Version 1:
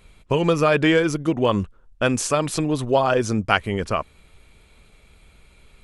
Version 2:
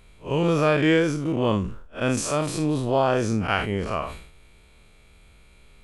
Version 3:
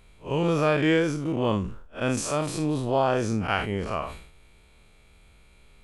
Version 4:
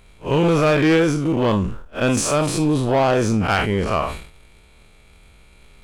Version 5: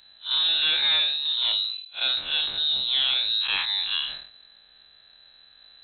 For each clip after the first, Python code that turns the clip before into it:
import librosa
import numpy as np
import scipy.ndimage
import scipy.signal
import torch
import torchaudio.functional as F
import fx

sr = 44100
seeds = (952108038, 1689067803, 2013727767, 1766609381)

y1 = fx.spec_blur(x, sr, span_ms=108.0)
y1 = fx.sustainer(y1, sr, db_per_s=77.0)
y2 = fx.peak_eq(y1, sr, hz=830.0, db=2.0, octaves=0.38)
y2 = y2 * 10.0 ** (-2.5 / 20.0)
y3 = fx.leveller(y2, sr, passes=1)
y3 = 10.0 ** (-15.5 / 20.0) * np.tanh(y3 / 10.0 ** (-15.5 / 20.0))
y3 = fx.rider(y3, sr, range_db=10, speed_s=2.0)
y3 = y3 * 10.0 ** (5.0 / 20.0)
y4 = fx.freq_invert(y3, sr, carrier_hz=4000)
y4 = y4 * 10.0 ** (-7.0 / 20.0)